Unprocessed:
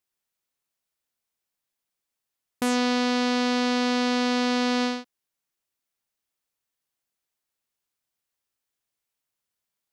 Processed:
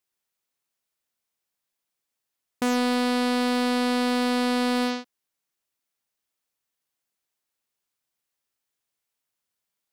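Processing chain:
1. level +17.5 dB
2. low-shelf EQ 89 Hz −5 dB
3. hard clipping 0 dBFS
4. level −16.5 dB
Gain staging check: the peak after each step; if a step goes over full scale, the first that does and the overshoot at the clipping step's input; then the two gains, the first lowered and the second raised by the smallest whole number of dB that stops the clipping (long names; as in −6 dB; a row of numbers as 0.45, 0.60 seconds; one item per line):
+4.5, +5.0, 0.0, −16.5 dBFS
step 1, 5.0 dB
step 1 +12.5 dB, step 4 −11.5 dB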